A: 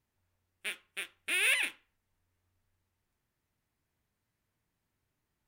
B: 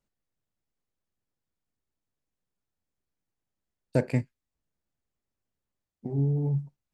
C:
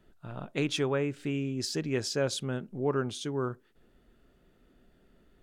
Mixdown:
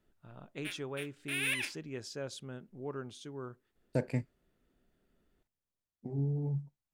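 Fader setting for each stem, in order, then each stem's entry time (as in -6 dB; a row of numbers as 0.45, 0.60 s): -5.5, -7.0, -11.5 dB; 0.00, 0.00, 0.00 s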